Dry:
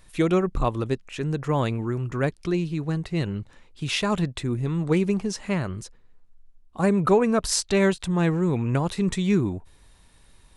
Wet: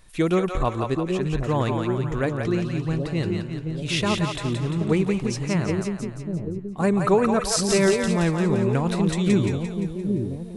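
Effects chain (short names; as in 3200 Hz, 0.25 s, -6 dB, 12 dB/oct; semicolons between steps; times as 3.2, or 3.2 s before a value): split-band echo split 520 Hz, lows 0.779 s, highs 0.173 s, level -4 dB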